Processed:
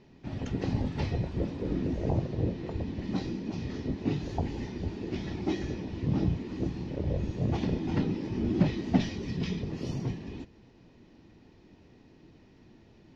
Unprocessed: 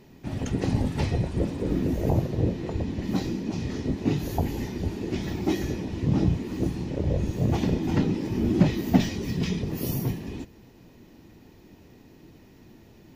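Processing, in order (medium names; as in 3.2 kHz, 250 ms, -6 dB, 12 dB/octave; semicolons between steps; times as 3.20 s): low-pass 5.6 kHz 24 dB/octave; trim -5 dB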